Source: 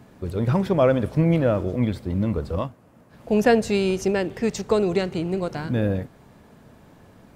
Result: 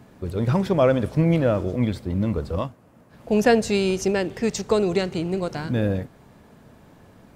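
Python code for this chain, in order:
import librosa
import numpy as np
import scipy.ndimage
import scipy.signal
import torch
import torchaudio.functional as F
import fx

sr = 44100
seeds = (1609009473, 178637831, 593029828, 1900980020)

y = fx.dynamic_eq(x, sr, hz=6100.0, q=0.72, threshold_db=-47.0, ratio=4.0, max_db=4)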